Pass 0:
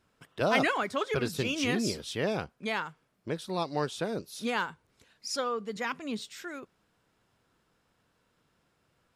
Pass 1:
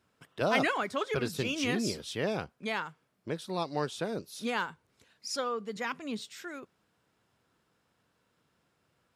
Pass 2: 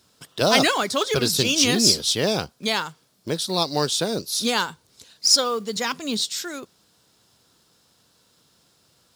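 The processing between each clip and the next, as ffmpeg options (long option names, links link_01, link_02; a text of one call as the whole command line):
ffmpeg -i in.wav -af "highpass=66,volume=-1.5dB" out.wav
ffmpeg -i in.wav -af "highshelf=frequency=3100:width_type=q:width=1.5:gain=10,acrusher=bits=6:mode=log:mix=0:aa=0.000001,volume=9dB" out.wav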